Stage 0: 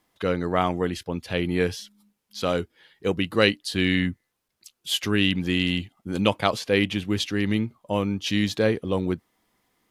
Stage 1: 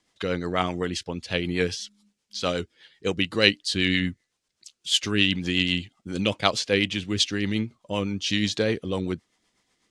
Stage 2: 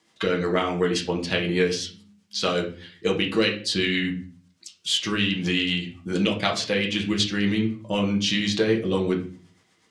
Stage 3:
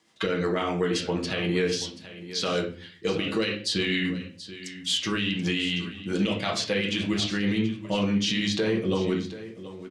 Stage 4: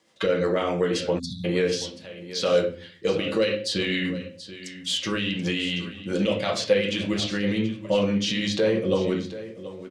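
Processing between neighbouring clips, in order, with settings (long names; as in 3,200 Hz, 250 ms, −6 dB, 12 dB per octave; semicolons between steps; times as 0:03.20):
low-pass filter 8,100 Hz 24 dB per octave; high-shelf EQ 2,600 Hz +11 dB; rotating-speaker cabinet horn 8 Hz; level −1 dB
high-pass filter 110 Hz 12 dB per octave; downward compressor 6 to 1, threshold −26 dBFS, peak gain reduction 14 dB; convolution reverb RT60 0.45 s, pre-delay 5 ms, DRR −1 dB; level +4 dB
brickwall limiter −15 dBFS, peak gain reduction 7.5 dB; single-tap delay 731 ms −14.5 dB; level −1 dB
de-essing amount 50%; parametric band 540 Hz +14 dB 0.23 octaves; time-frequency box erased 0:01.19–0:01.45, 270–3,400 Hz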